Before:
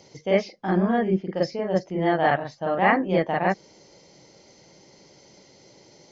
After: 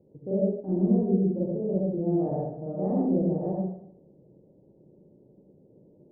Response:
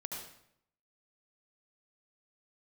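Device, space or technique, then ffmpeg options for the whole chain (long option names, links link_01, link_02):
next room: -filter_complex "[0:a]lowpass=frequency=470:width=0.5412,lowpass=frequency=470:width=1.3066[link_01];[1:a]atrim=start_sample=2205[link_02];[link_01][link_02]afir=irnorm=-1:irlink=0"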